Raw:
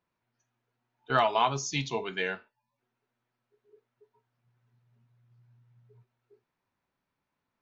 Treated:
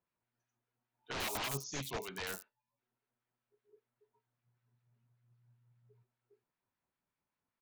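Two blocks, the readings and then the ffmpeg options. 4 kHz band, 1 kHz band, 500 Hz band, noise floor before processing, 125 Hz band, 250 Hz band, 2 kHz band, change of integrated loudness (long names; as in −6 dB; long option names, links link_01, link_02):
−7.0 dB, −16.5 dB, −13.5 dB, −85 dBFS, −9.5 dB, −9.5 dB, −9.5 dB, −10.5 dB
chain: -filter_complex "[0:a]aeval=exprs='(mod(15*val(0)+1,2)-1)/15':channel_layout=same,acrossover=split=1300[link_01][link_02];[link_01]aeval=exprs='val(0)*(1-0.5/2+0.5/2*cos(2*PI*5.1*n/s))':channel_layout=same[link_03];[link_02]aeval=exprs='val(0)*(1-0.5/2-0.5/2*cos(2*PI*5.1*n/s))':channel_layout=same[link_04];[link_03][link_04]amix=inputs=2:normalize=0,acrossover=split=5900[link_05][link_06];[link_06]adelay=90[link_07];[link_05][link_07]amix=inputs=2:normalize=0,volume=-5.5dB"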